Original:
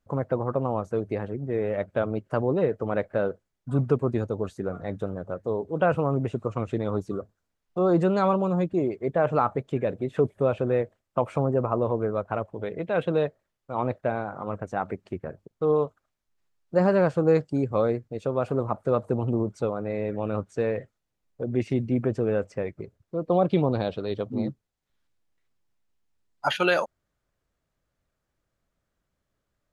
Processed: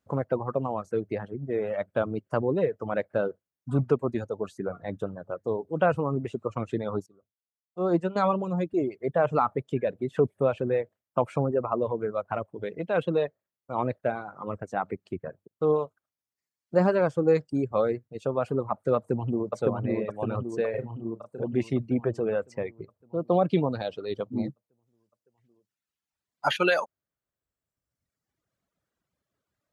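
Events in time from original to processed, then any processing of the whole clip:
0:07.06–0:08.16: expander for the loud parts 2.5 to 1, over −31 dBFS
0:18.96–0:19.55: delay throw 560 ms, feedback 65%, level −1 dB
0:20.70–0:21.44: double-tracking delay 35 ms −3 dB
whole clip: high-pass filter 90 Hz; reverb reduction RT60 1.4 s

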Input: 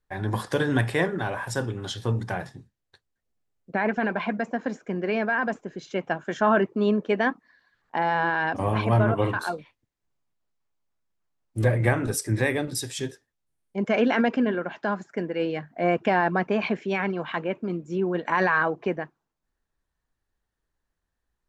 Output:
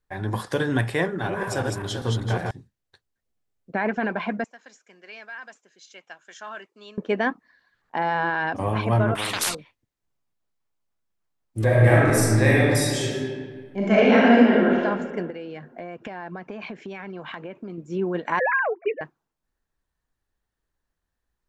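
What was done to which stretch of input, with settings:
0:01.04–0:02.51: feedback delay that plays each chunk backwards 196 ms, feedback 48%, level −2 dB
0:04.44–0:06.98: resonant band-pass 8,000 Hz, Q 0.69
0:09.15–0:09.55: every bin compressed towards the loudest bin 10 to 1
0:11.64–0:14.79: thrown reverb, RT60 1.8 s, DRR −6 dB
0:15.30–0:17.78: downward compressor 12 to 1, threshold −31 dBFS
0:18.39–0:19.01: three sine waves on the formant tracks

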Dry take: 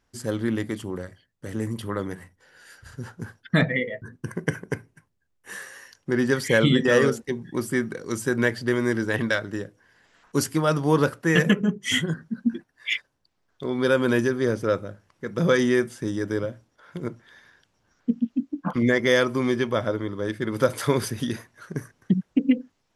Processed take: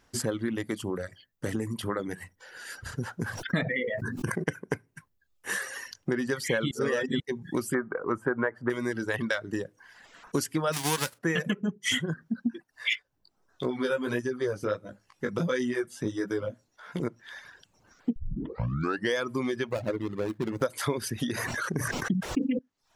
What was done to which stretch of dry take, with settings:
0:03.24–0:04.44: level that may fall only so fast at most 38 dB per second
0:06.71–0:07.20: reverse
0:07.74–0:08.70: drawn EQ curve 190 Hz 0 dB, 1,300 Hz +11 dB, 4,300 Hz −27 dB, 8,500 Hz −22 dB
0:10.72–0:11.17: spectral envelope flattened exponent 0.3
0:12.95–0:17.00: chorus effect 1.5 Hz, delay 15.5 ms
0:18.16: tape start 1.00 s
0:19.68–0:20.62: running median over 41 samples
0:21.32–0:22.59: level that may fall only so fast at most 25 dB per second
whole clip: downward compressor 4 to 1, threshold −35 dBFS; reverb reduction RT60 0.71 s; low-shelf EQ 130 Hz −5 dB; level +8.5 dB

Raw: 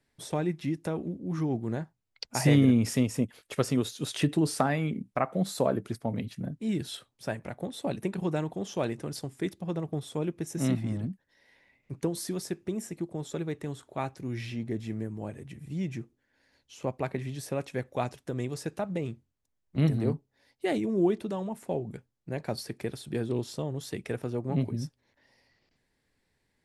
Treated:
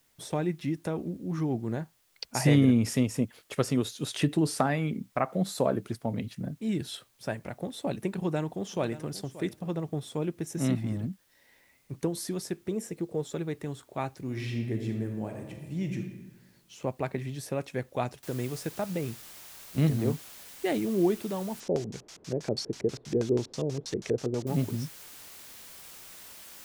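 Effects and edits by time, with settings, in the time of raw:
0:08.11–0:09.10: delay throw 580 ms, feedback 10%, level −15.5 dB
0:12.71–0:13.22: parametric band 470 Hz +12 dB 0.24 octaves
0:14.23–0:15.99: thrown reverb, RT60 1.2 s, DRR 3.5 dB
0:18.23: noise floor change −69 dB −48 dB
0:21.60–0:24.47: auto-filter low-pass square 6.2 Hz 440–6,000 Hz

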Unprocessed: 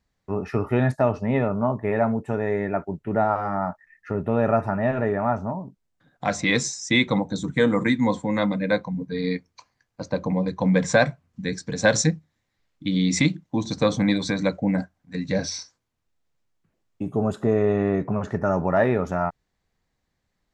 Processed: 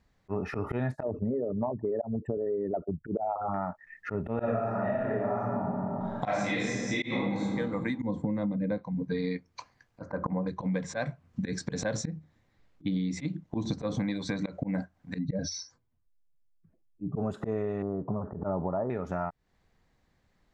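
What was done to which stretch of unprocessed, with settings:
0:01.03–0:03.54: spectral envelope exaggerated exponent 3
0:04.34–0:07.47: thrown reverb, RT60 1.4 s, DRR −10 dB
0:08.02–0:08.78: tilt shelving filter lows +9 dB, about 680 Hz
0:10.01–0:10.47: high shelf with overshoot 2,200 Hz −13.5 dB, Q 3
0:11.84–0:13.95: tilt shelving filter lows +3 dB
0:15.18–0:17.17: expanding power law on the bin magnitudes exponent 1.7
0:17.82–0:18.90: Butterworth low-pass 1,200 Hz
whole clip: volume swells 158 ms; downward compressor 12 to 1, threshold −34 dBFS; high-shelf EQ 4,600 Hz −9 dB; level +6.5 dB

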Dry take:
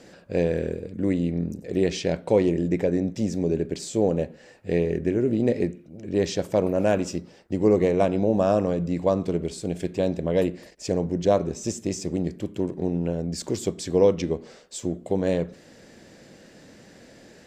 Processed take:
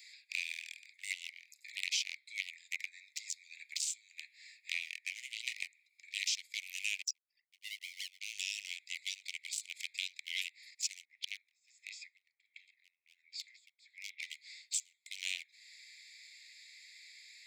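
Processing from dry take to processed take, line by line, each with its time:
0:01.70–0:04.70: Butterworth high-pass 1,300 Hz 96 dB per octave
0:07.02–0:08.21: spectral envelope exaggerated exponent 3
0:11.05–0:14.22: LFO wah 1.4 Hz 280–3,200 Hz, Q 2.9
whole clip: adaptive Wiener filter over 15 samples; Butterworth high-pass 2,100 Hz 96 dB per octave; downward compressor 2.5 to 1, threshold −58 dBFS; level +18 dB

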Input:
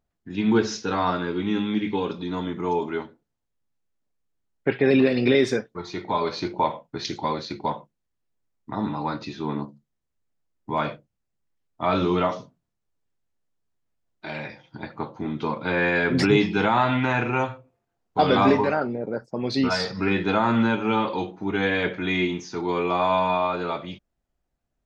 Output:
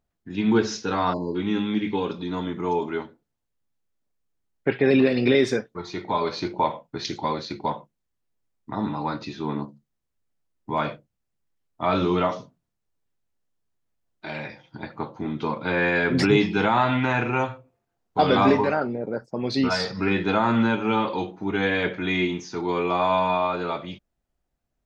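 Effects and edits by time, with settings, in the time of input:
0:01.13–0:01.35: time-frequency box erased 1,100–4,000 Hz

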